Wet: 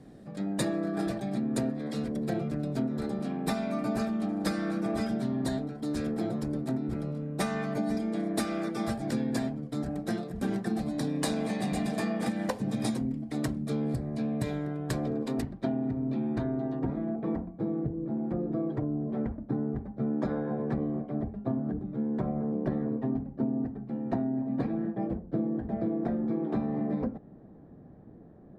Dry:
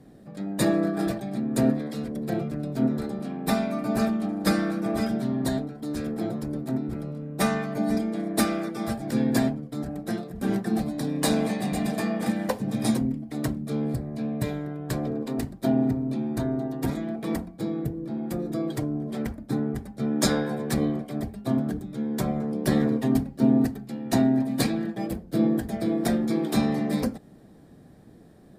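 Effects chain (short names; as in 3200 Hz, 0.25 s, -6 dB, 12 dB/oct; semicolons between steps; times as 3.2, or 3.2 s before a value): LPF 9700 Hz 12 dB/oct, from 15.42 s 3000 Hz, from 16.79 s 1100 Hz; compressor 12:1, threshold -26 dBFS, peak gain reduction 11.5 dB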